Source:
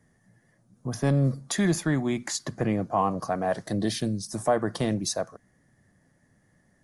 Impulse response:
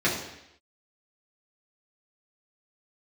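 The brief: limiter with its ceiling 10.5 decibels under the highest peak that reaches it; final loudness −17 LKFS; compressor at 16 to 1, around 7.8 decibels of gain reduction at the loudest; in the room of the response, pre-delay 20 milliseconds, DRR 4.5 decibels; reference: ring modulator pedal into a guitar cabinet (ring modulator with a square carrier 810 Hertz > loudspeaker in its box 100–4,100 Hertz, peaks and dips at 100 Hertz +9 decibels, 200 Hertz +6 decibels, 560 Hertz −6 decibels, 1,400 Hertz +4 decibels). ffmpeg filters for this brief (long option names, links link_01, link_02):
-filter_complex "[0:a]acompressor=threshold=-26dB:ratio=16,alimiter=level_in=3dB:limit=-24dB:level=0:latency=1,volume=-3dB,asplit=2[link_01][link_02];[1:a]atrim=start_sample=2205,adelay=20[link_03];[link_02][link_03]afir=irnorm=-1:irlink=0,volume=-19dB[link_04];[link_01][link_04]amix=inputs=2:normalize=0,aeval=exprs='val(0)*sgn(sin(2*PI*810*n/s))':channel_layout=same,highpass=100,equalizer=frequency=100:width_type=q:width=4:gain=9,equalizer=frequency=200:width_type=q:width=4:gain=6,equalizer=frequency=560:width_type=q:width=4:gain=-6,equalizer=frequency=1400:width_type=q:width=4:gain=4,lowpass=frequency=4100:width=0.5412,lowpass=frequency=4100:width=1.3066,volume=17dB"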